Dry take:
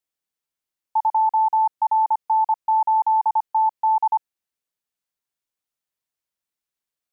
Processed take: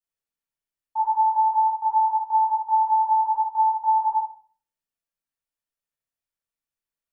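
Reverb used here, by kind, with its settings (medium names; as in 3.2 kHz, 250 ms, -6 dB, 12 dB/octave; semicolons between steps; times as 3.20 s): simulated room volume 50 m³, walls mixed, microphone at 2.5 m; trim -16.5 dB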